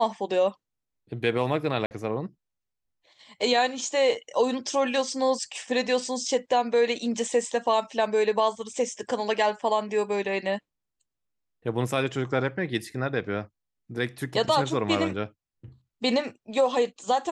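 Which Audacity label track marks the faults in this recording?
1.860000	1.910000	drop-out 49 ms

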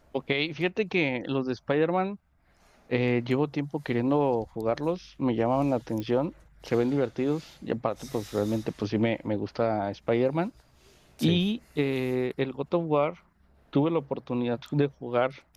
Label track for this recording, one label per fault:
6.000000	6.000000	click −22 dBFS

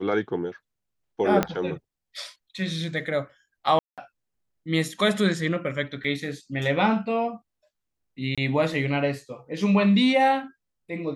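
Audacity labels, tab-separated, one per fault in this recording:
1.430000	1.430000	click −8 dBFS
3.790000	3.980000	drop-out 187 ms
6.040000	6.040000	drop-out 3.5 ms
8.350000	8.380000	drop-out 26 ms

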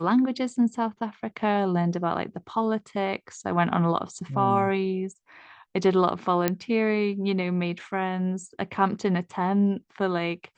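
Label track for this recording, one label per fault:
6.480000	6.480000	click −8 dBFS

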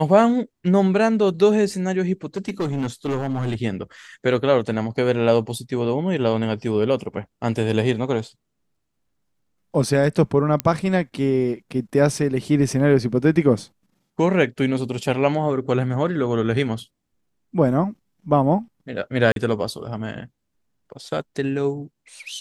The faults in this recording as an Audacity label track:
2.360000	3.550000	clipping −19.5 dBFS
10.600000	10.600000	click −6 dBFS
19.320000	19.360000	drop-out 42 ms

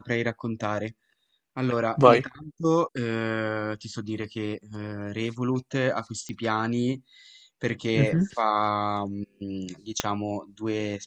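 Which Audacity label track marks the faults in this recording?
6.290000	6.290000	click −23 dBFS
10.000000	10.000000	click −7 dBFS

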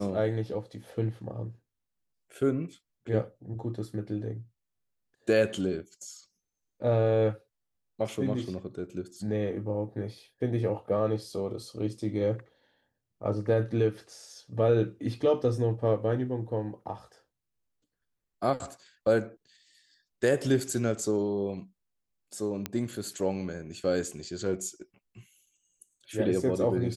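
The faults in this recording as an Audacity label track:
22.660000	22.660000	click −15 dBFS

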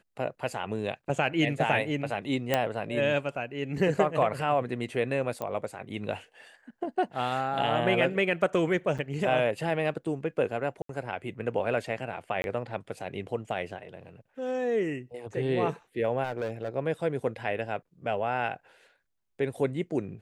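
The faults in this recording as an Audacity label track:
2.540000	2.540000	click −10 dBFS
5.420000	5.420000	click −20 dBFS
8.980000	8.990000	drop-out 7 ms
10.820000	10.890000	drop-out 73 ms
12.420000	12.440000	drop-out 21 ms
16.230000	16.690000	clipping −27 dBFS

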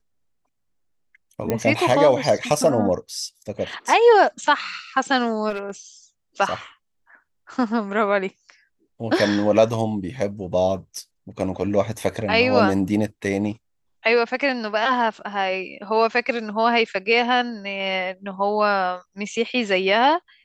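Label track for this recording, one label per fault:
1.500000	1.500000	click −9 dBFS
5.490000	5.700000	clipping −21 dBFS

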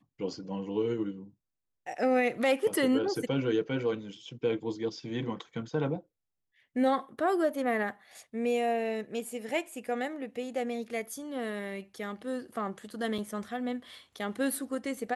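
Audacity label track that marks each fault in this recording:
13.180000	13.180000	drop-out 3.9 ms

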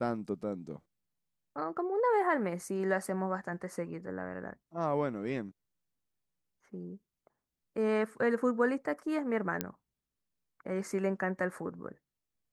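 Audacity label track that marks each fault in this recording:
9.610000	9.610000	click −15 dBFS

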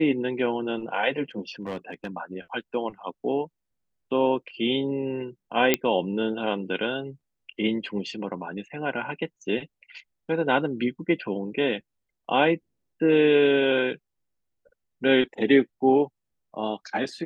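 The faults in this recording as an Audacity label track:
1.620000	2.070000	clipping −26.5 dBFS
5.740000	5.740000	click −4 dBFS

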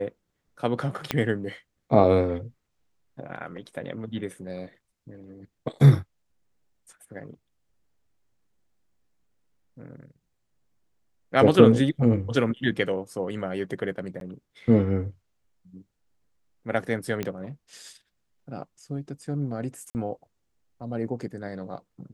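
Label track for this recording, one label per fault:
1.110000	1.110000	click −9 dBFS
14.200000	14.210000	drop-out 12 ms
17.230000	17.230000	click −15 dBFS
19.900000	19.950000	drop-out 49 ms

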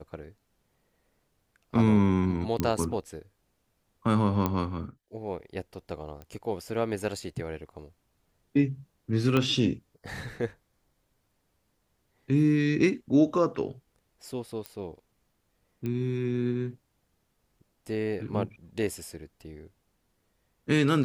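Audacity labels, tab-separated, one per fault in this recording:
2.600000	2.600000	click −13 dBFS
4.460000	4.460000	click −13 dBFS
6.220000	6.220000	click −29 dBFS
9.370000	9.370000	click −13 dBFS
14.660000	14.660000	click −20 dBFS
15.860000	15.860000	click −22 dBFS

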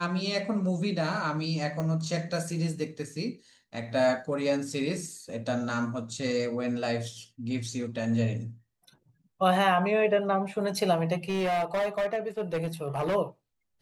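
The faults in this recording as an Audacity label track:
1.800000	1.800000	click −20 dBFS
11.290000	13.160000	clipping −24.5 dBFS

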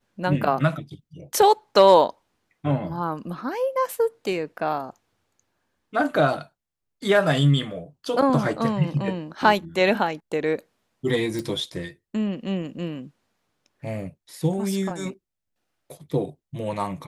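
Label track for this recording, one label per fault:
11.390000	11.390000	click

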